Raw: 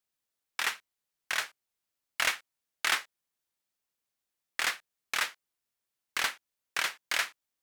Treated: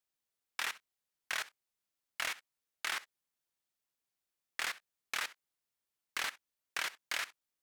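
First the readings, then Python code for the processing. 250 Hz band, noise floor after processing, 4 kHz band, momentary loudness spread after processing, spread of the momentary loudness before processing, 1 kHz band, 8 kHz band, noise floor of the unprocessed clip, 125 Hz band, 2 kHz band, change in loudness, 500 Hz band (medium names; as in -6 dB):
-7.0 dB, under -85 dBFS, -7.0 dB, 8 LU, 12 LU, -7.0 dB, -7.0 dB, under -85 dBFS, no reading, -7.0 dB, -7.0 dB, -7.0 dB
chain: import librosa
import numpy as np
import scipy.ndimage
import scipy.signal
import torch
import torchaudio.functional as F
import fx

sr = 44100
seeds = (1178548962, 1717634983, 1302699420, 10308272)

y = fx.level_steps(x, sr, step_db=18)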